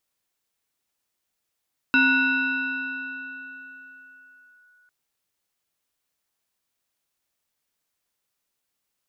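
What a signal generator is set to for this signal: FM tone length 2.95 s, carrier 1.47 kHz, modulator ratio 0.82, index 1.1, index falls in 2.72 s linear, decay 4.03 s, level -14 dB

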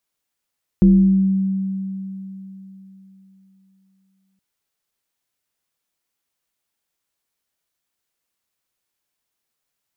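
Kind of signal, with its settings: FM tone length 3.57 s, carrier 192 Hz, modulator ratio 0.78, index 0.53, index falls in 1.22 s exponential, decay 3.67 s, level -7 dB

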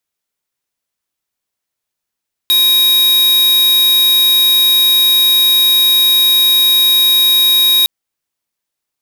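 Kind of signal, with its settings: tone square 3.79 kHz -10 dBFS 5.36 s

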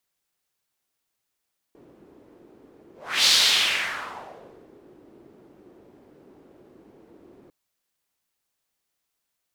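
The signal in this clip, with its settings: whoosh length 5.75 s, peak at 1.52 s, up 0.36 s, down 1.56 s, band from 350 Hz, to 4.2 kHz, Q 2.5, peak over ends 35 dB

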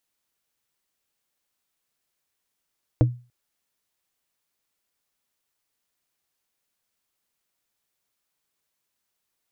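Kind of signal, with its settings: wood hit plate, length 0.29 s, lowest mode 122 Hz, modes 4, decay 0.33 s, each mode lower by 4 dB, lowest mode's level -11 dB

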